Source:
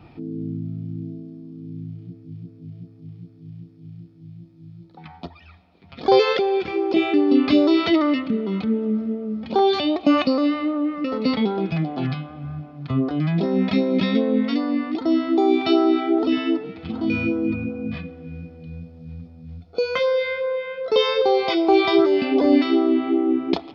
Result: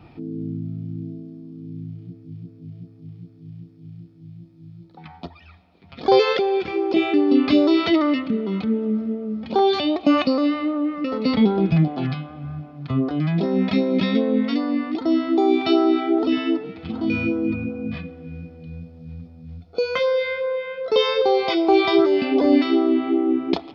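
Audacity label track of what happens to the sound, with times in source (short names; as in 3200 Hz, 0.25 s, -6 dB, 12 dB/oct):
11.340000	11.880000	low shelf 260 Hz +9.5 dB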